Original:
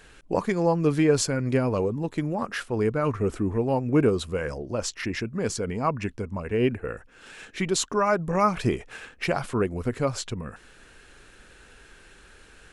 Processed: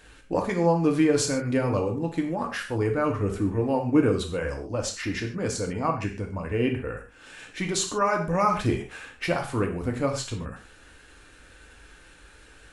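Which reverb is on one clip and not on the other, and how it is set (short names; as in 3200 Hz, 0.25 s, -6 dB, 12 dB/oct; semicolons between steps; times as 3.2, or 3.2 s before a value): non-linear reverb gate 0.17 s falling, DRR 2 dB; gain -2 dB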